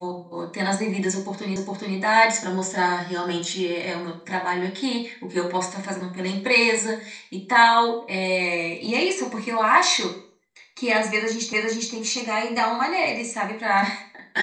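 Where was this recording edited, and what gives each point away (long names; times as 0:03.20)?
0:01.56: the same again, the last 0.41 s
0:11.53: the same again, the last 0.41 s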